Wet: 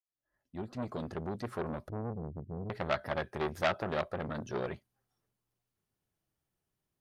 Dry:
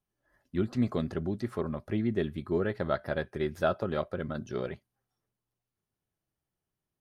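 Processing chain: fade-in on the opening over 1.86 s; 1.89–2.70 s: inverse Chebyshev low-pass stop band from 1.2 kHz, stop band 80 dB; transformer saturation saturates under 2 kHz; trim +1.5 dB

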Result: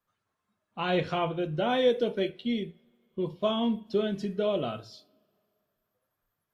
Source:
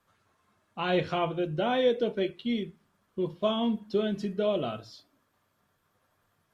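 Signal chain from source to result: spectral noise reduction 12 dB; 1.69–2.29 s: treble shelf 5.7 kHz +7 dB; on a send: reverberation, pre-delay 3 ms, DRR 16.5 dB

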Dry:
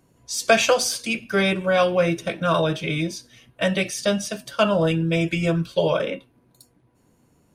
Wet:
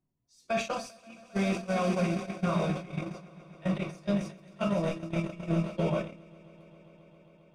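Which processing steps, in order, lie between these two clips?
on a send: echo with a slow build-up 134 ms, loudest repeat 5, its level -11 dB; on the sum: simulated room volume 150 m³, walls furnished, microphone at 0.95 m; reverse; upward compressor, threshold -30 dBFS; reverse; gate -15 dBFS, range -23 dB; graphic EQ with 31 bands 500 Hz -8 dB, 1.6 kHz -7 dB, 3.15 kHz -6 dB, 12.5 kHz -5 dB; peak limiter -14 dBFS, peak gain reduction 10 dB; tone controls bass +6 dB, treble -7 dB; decay stretcher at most 130 dB/s; trim -7 dB

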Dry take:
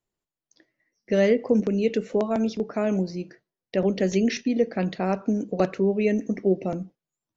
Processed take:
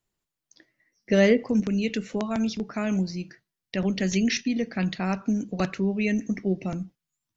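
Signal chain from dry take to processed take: peaking EQ 490 Hz -5.5 dB 1.8 oct, from 1.43 s -14.5 dB; trim +5 dB

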